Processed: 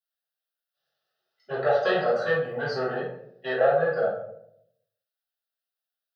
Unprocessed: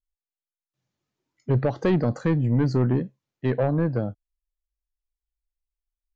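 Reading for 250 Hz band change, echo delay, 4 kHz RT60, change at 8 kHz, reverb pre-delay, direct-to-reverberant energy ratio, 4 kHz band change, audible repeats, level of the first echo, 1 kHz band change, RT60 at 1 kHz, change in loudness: −14.0 dB, no echo audible, 0.40 s, can't be measured, 3 ms, −10.0 dB, +7.5 dB, no echo audible, no echo audible, +6.0 dB, 0.60 s, −1.5 dB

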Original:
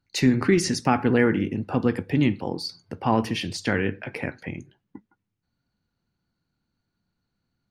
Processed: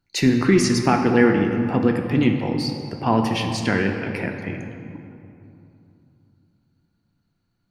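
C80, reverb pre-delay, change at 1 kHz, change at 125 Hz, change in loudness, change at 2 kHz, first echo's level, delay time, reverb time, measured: 6.5 dB, 3 ms, +3.5 dB, +3.5 dB, +3.5 dB, +3.5 dB, no echo audible, no echo audible, 2.9 s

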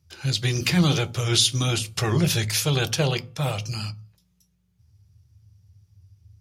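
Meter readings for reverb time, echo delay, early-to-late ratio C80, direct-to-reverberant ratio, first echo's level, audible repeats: 0.40 s, no echo audible, 26.0 dB, 11.0 dB, no echo audible, no echo audible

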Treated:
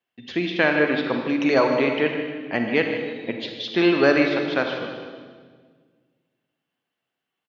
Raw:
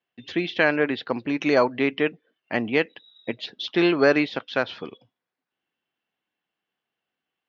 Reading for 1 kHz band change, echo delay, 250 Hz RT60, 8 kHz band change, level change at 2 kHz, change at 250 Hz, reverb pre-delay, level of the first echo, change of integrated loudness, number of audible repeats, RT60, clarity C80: +2.0 dB, 154 ms, 2.1 s, can't be measured, +2.0 dB, +2.5 dB, 35 ms, −12.0 dB, +2.0 dB, 3, 1.6 s, 5.0 dB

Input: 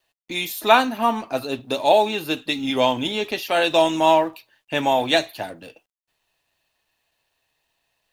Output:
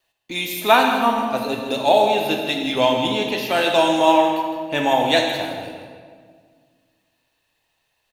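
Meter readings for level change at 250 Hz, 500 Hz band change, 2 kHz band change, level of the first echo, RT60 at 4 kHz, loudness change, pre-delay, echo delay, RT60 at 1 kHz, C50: +3.0 dB, +2.0 dB, +2.0 dB, −10.0 dB, 1.3 s, +1.5 dB, 23 ms, 160 ms, 1.7 s, 3.0 dB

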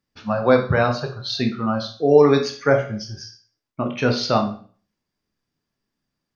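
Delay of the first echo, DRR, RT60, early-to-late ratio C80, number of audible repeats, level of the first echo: no echo audible, 4.0 dB, 0.45 s, 14.0 dB, no echo audible, no echo audible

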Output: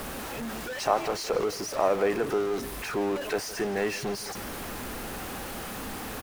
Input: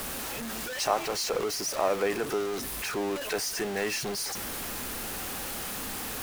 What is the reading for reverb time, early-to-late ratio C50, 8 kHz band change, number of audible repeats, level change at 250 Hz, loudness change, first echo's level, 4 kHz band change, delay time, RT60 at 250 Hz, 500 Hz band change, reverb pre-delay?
no reverb audible, no reverb audible, −5.5 dB, 1, +3.0 dB, +0.5 dB, −16.5 dB, −4.0 dB, 165 ms, no reverb audible, +3.0 dB, no reverb audible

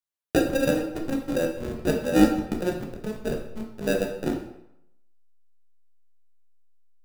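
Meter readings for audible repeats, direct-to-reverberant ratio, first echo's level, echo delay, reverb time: no echo audible, 1.5 dB, no echo audible, no echo audible, 0.80 s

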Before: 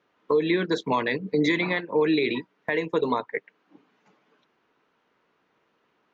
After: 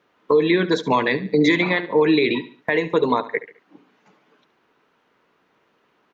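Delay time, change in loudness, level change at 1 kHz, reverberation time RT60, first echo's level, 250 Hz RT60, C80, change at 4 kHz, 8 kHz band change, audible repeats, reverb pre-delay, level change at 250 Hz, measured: 71 ms, +5.5 dB, +5.5 dB, no reverb audible, −15.5 dB, no reverb audible, no reverb audible, +5.5 dB, can't be measured, 3, no reverb audible, +5.5 dB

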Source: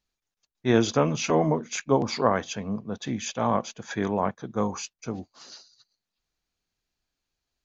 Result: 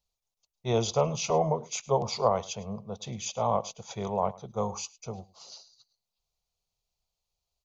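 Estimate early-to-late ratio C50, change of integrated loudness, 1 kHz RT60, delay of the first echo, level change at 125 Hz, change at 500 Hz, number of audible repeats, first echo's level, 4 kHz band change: no reverb audible, −3.5 dB, no reverb audible, 105 ms, −3.0 dB, −2.5 dB, 1, −21.0 dB, −2.5 dB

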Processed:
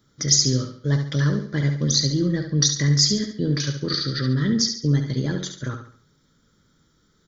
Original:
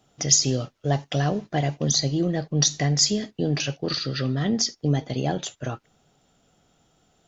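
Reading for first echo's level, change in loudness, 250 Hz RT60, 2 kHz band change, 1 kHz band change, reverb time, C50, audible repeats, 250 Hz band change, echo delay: −7.5 dB, +2.5 dB, no reverb audible, +2.0 dB, −8.5 dB, no reverb audible, no reverb audible, 4, +3.0 dB, 70 ms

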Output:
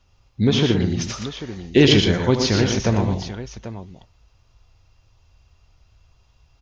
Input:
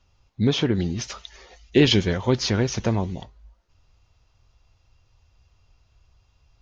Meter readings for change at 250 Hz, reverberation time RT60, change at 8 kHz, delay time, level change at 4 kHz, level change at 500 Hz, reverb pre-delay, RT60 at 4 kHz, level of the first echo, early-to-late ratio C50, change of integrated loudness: +4.0 dB, no reverb audible, can't be measured, 76 ms, +4.0 dB, +4.0 dB, no reverb audible, no reverb audible, −10.5 dB, no reverb audible, +3.5 dB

